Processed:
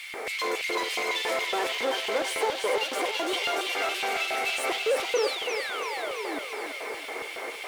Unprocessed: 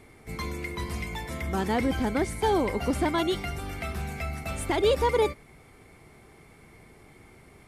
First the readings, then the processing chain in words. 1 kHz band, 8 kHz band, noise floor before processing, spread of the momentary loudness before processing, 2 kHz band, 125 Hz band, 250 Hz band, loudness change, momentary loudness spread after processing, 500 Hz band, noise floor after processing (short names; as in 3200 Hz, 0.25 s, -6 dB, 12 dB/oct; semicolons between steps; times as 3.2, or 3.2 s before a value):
+1.0 dB, +6.0 dB, -54 dBFS, 11 LU, +7.5 dB, under -25 dB, -9.5 dB, 0.0 dB, 8 LU, 0.0 dB, -38 dBFS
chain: HPF 210 Hz 24 dB/oct; overdrive pedal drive 33 dB, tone 3500 Hz, clips at -13.5 dBFS; added noise pink -46 dBFS; compressor, threshold -23 dBFS, peak gain reduction 6.5 dB; LFO high-pass square 3.6 Hz 480–2900 Hz; painted sound fall, 5.15–6.39, 270–6300 Hz -31 dBFS; thinning echo 0.333 s, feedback 60%, high-pass 320 Hz, level -5.5 dB; gain -5.5 dB